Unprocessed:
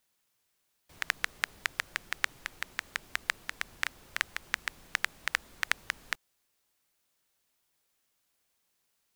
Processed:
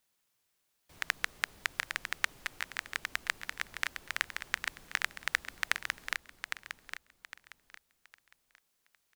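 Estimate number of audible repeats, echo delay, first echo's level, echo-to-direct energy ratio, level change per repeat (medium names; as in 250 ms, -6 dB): 3, 808 ms, -7.5 dB, -7.0 dB, -11.0 dB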